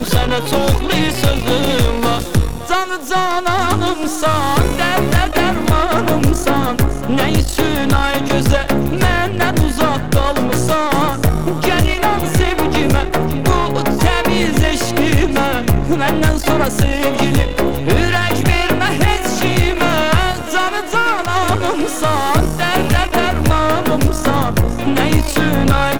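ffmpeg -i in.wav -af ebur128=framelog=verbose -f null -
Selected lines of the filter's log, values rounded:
Integrated loudness:
  I:         -15.4 LUFS
  Threshold: -25.4 LUFS
Loudness range:
  LRA:         1.1 LU
  Threshold: -35.4 LUFS
  LRA low:   -16.0 LUFS
  LRA high:  -15.0 LUFS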